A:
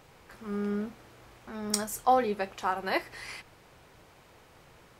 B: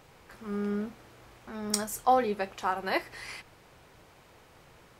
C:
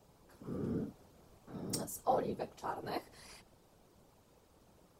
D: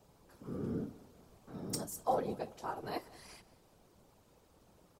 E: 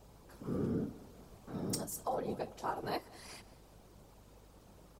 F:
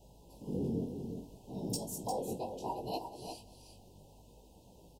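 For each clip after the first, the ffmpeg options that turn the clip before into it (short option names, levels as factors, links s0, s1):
-af anull
-filter_complex "[0:a]equalizer=f=2000:w=0.81:g=-13,afftfilt=real='hypot(re,im)*cos(2*PI*random(0))':imag='hypot(re,im)*sin(2*PI*random(1))':win_size=512:overlap=0.75,acrossover=split=210|1100[s0][s1][s2];[s2]asoftclip=type=hard:threshold=0.0282[s3];[s0][s1][s3]amix=inputs=3:normalize=0"
-af "aecho=1:1:187|374|561:0.1|0.04|0.016"
-af "alimiter=level_in=2.11:limit=0.0631:level=0:latency=1:release=388,volume=0.473,aeval=exprs='val(0)+0.000501*(sin(2*PI*50*n/s)+sin(2*PI*2*50*n/s)/2+sin(2*PI*3*50*n/s)/3+sin(2*PI*4*50*n/s)/4+sin(2*PI*5*50*n/s)/5)':c=same,volume=1.68"
-filter_complex "[0:a]flanger=delay=15.5:depth=6.5:speed=0.66,asuperstop=centerf=1600:order=20:qfactor=1,asplit=2[s0][s1];[s1]aecho=0:1:352:0.422[s2];[s0][s2]amix=inputs=2:normalize=0,volume=1.41"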